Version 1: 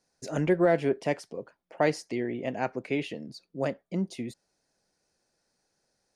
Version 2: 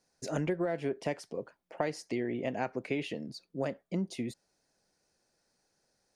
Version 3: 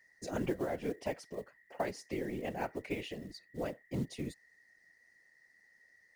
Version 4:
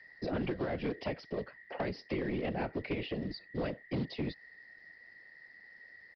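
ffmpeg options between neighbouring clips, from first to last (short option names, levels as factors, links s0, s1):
-af "acompressor=threshold=0.0398:ratio=10"
-af "aeval=exprs='val(0)+0.00112*sin(2*PI*1900*n/s)':c=same,acrusher=bits=6:mode=log:mix=0:aa=0.000001,afftfilt=real='hypot(re,im)*cos(2*PI*random(0))':imag='hypot(re,im)*sin(2*PI*random(1))':win_size=512:overlap=0.75,volume=1.26"
-filter_complex "[0:a]acrossover=split=210|640|1400[s0][s1][s2][s3];[s0]acompressor=threshold=0.00447:ratio=4[s4];[s1]acompressor=threshold=0.00501:ratio=4[s5];[s2]acompressor=threshold=0.00141:ratio=4[s6];[s3]acompressor=threshold=0.002:ratio=4[s7];[s4][s5][s6][s7]amix=inputs=4:normalize=0,aresample=11025,aeval=exprs='0.0355*sin(PI/2*1.78*val(0)/0.0355)':c=same,aresample=44100,volume=1.19"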